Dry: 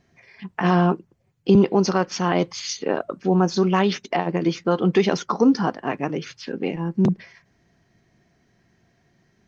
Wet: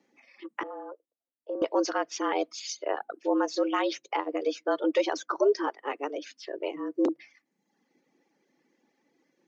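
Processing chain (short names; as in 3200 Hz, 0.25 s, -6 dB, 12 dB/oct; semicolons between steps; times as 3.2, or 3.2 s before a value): frequency shift +140 Hz; 0.63–1.62 ladder band-pass 700 Hz, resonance 30%; reverb removal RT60 0.86 s; gain -6.5 dB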